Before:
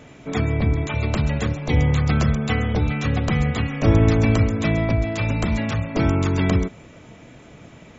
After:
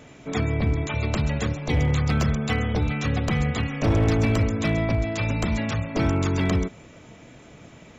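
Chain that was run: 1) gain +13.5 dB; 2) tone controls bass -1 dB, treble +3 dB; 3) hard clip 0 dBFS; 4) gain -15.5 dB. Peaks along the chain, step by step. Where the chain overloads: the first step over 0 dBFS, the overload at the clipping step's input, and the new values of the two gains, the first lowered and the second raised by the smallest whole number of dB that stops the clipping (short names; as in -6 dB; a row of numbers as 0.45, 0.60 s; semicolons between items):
+8.5, +8.0, 0.0, -15.5 dBFS; step 1, 8.0 dB; step 1 +5.5 dB, step 4 -7.5 dB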